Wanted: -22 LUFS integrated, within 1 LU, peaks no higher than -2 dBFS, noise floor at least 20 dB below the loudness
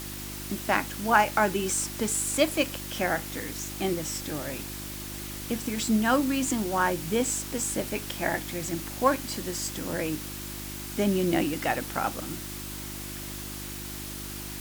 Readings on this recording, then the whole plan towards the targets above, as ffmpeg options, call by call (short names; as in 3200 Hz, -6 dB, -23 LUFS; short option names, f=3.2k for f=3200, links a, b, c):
hum 50 Hz; harmonics up to 350 Hz; hum level -38 dBFS; noise floor -38 dBFS; noise floor target -49 dBFS; loudness -28.5 LUFS; peak -6.0 dBFS; loudness target -22.0 LUFS
-> -af "bandreject=f=50:t=h:w=4,bandreject=f=100:t=h:w=4,bandreject=f=150:t=h:w=4,bandreject=f=200:t=h:w=4,bandreject=f=250:t=h:w=4,bandreject=f=300:t=h:w=4,bandreject=f=350:t=h:w=4"
-af "afftdn=nr=11:nf=-38"
-af "volume=6.5dB,alimiter=limit=-2dB:level=0:latency=1"